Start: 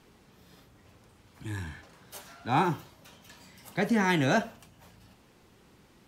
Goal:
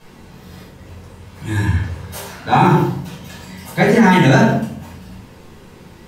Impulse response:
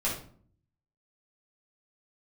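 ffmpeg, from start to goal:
-filter_complex "[1:a]atrim=start_sample=2205,asetrate=35280,aresample=44100[a];[0:a][a]afir=irnorm=-1:irlink=0,alimiter=level_in=8.5dB:limit=-1dB:release=50:level=0:latency=1,volume=-1dB"

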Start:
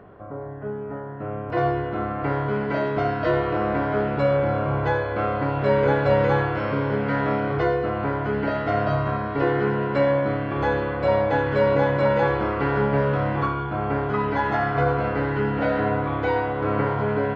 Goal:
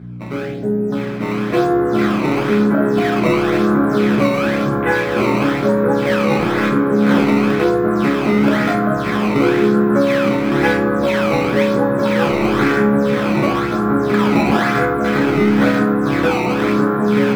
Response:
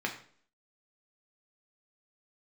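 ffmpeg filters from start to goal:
-filter_complex "[0:a]acompressor=threshold=-23dB:ratio=4,afwtdn=0.0282,crystalizer=i=5.5:c=0,acrusher=samples=15:mix=1:aa=0.000001:lfo=1:lforange=24:lforate=0.99,highshelf=f=3.7k:g=-11,aeval=exprs='val(0)+0.01*(sin(2*PI*60*n/s)+sin(2*PI*2*60*n/s)/2+sin(2*PI*3*60*n/s)/3+sin(2*PI*4*60*n/s)/4+sin(2*PI*5*60*n/s)/5)':c=same,equalizer=f=770:w=1.5:g=-5[a];[1:a]atrim=start_sample=2205[b];[a][b]afir=irnorm=-1:irlink=0,volume=7dB"

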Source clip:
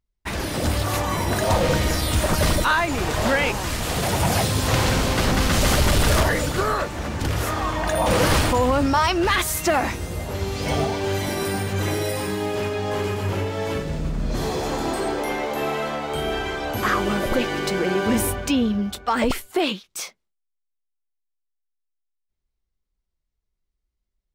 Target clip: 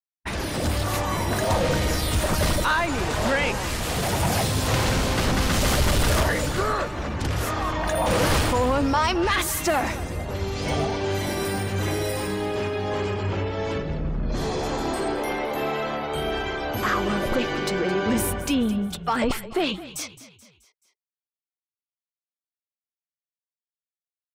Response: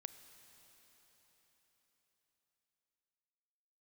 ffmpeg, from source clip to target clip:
-filter_complex "[0:a]afftfilt=real='re*gte(hypot(re,im),0.00891)':imag='im*gte(hypot(re,im),0.00891)':win_size=1024:overlap=0.75,anlmdn=0.631,asplit=2[a][b];[b]asoftclip=type=tanh:threshold=-22.5dB,volume=-5dB[c];[a][c]amix=inputs=2:normalize=0,asplit=5[d][e][f][g][h];[e]adelay=215,afreqshift=-34,volume=-15.5dB[i];[f]adelay=430,afreqshift=-68,volume=-21.7dB[j];[g]adelay=645,afreqshift=-102,volume=-27.9dB[k];[h]adelay=860,afreqshift=-136,volume=-34.1dB[l];[d][i][j][k][l]amix=inputs=5:normalize=0,volume=-4.5dB"

